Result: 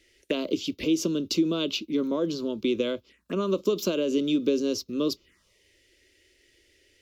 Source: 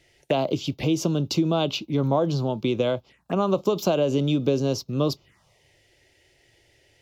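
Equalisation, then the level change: fixed phaser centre 320 Hz, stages 4; 0.0 dB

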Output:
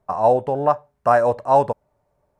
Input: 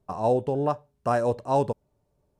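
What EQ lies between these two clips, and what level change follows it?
band shelf 1100 Hz +9.5 dB 2.3 oct; 0.0 dB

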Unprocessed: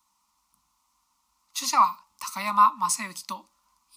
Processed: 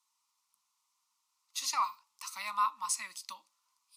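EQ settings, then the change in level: band-pass 5600 Hz, Q 0.68; bell 6000 Hz -6 dB 1.8 oct; 0.0 dB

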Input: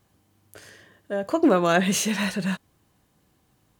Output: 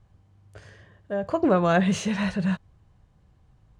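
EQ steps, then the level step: polynomial smoothing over 9 samples; tilt -3.5 dB/oct; bell 280 Hz -11 dB 1.3 oct; 0.0 dB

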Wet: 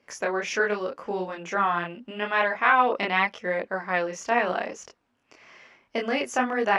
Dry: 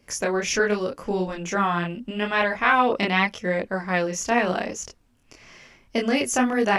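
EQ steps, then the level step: band-pass 1100 Hz, Q 0.52; 0.0 dB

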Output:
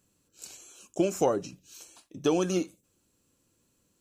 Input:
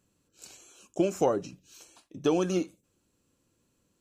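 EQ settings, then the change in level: high shelf 5200 Hz +6.5 dB; 0.0 dB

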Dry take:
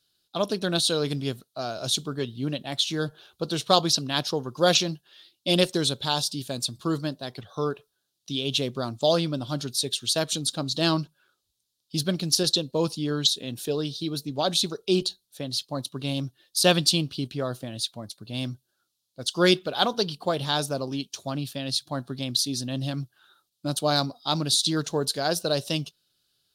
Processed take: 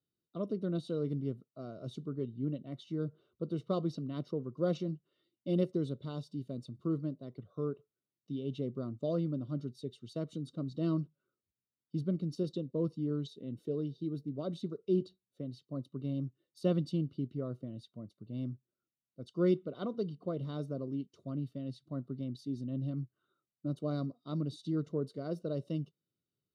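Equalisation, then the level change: running mean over 53 samples; HPF 110 Hz; -4.0 dB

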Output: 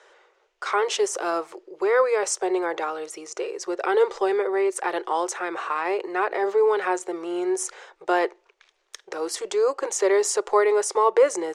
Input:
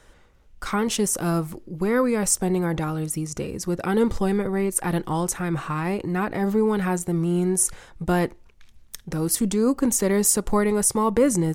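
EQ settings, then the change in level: elliptic high-pass 380 Hz, stop band 40 dB; air absorption 110 m; bell 6800 Hz +3 dB 0.57 oct; +4.5 dB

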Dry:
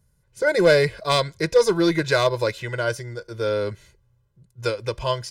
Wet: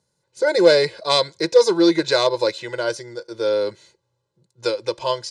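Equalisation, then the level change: speaker cabinet 180–7900 Hz, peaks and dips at 340 Hz +8 dB, 520 Hz +7 dB, 880 Hz +9 dB, 4100 Hz +8 dB; high shelf 5200 Hz +11 dB; -3.5 dB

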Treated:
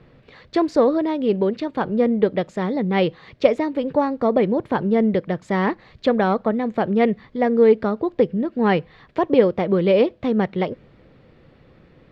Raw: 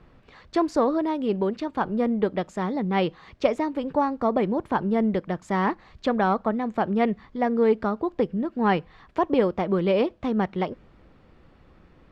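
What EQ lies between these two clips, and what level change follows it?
ten-band EQ 125 Hz +11 dB, 250 Hz +4 dB, 500 Hz +10 dB, 2000 Hz +7 dB, 4000 Hz +8 dB; -4.0 dB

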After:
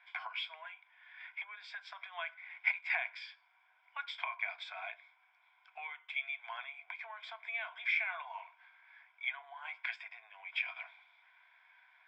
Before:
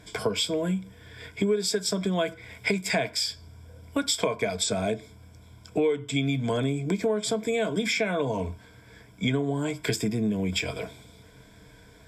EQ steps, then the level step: Chebyshev high-pass 750 Hz, order 6; ladder low-pass 2800 Hz, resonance 45%; air absorption 56 m; +1.0 dB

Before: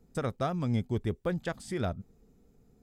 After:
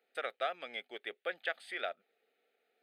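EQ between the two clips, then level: polynomial smoothing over 15 samples; HPF 670 Hz 24 dB/oct; fixed phaser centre 2400 Hz, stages 4; +7.0 dB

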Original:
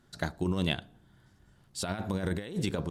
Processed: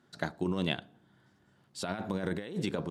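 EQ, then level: HPF 160 Hz 12 dB/oct; high shelf 6200 Hz -10 dB; 0.0 dB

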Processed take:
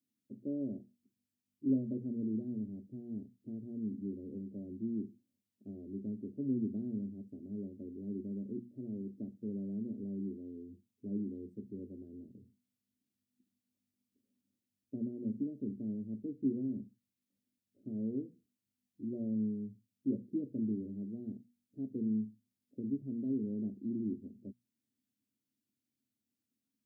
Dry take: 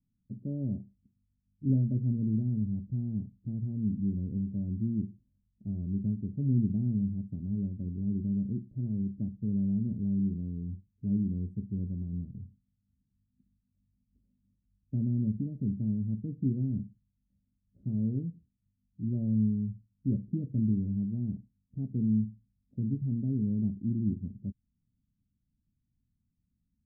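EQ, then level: HPF 170 Hz 24 dB/oct; notches 60/120/180/240 Hz; fixed phaser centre 410 Hz, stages 4; +3.5 dB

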